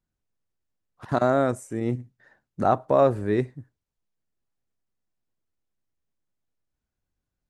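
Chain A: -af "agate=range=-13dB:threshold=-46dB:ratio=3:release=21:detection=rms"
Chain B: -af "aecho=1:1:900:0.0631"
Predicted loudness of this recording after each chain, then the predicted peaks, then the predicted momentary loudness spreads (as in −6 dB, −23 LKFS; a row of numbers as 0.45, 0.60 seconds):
−24.5, −24.5 LKFS; −6.5, −6.5 dBFS; 9, 23 LU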